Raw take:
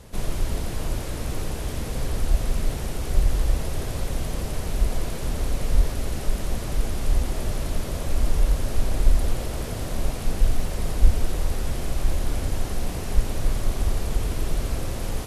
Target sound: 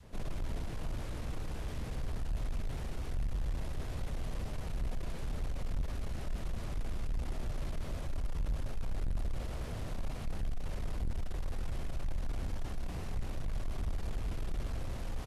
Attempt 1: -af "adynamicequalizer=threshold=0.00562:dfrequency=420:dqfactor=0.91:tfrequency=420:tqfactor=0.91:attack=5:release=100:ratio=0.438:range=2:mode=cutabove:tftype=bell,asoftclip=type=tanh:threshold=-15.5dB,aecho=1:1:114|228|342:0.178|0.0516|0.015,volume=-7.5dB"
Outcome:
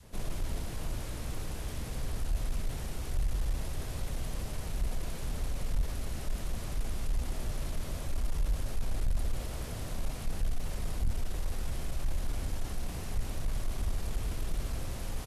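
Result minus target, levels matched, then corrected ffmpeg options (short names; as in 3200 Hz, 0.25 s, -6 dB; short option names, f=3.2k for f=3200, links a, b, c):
soft clip: distortion -5 dB; 4000 Hz band +3.0 dB
-af "adynamicequalizer=threshold=0.00562:dfrequency=420:dqfactor=0.91:tfrequency=420:tqfactor=0.91:attack=5:release=100:ratio=0.438:range=2:mode=cutabove:tftype=bell,lowpass=f=3.1k:p=1,asoftclip=type=tanh:threshold=-22dB,aecho=1:1:114|228|342:0.178|0.0516|0.015,volume=-7.5dB"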